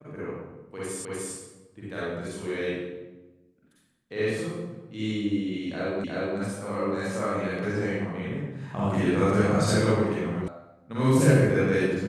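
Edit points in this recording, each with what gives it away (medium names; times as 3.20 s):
1.05 s: repeat of the last 0.3 s
6.04 s: repeat of the last 0.36 s
10.48 s: sound stops dead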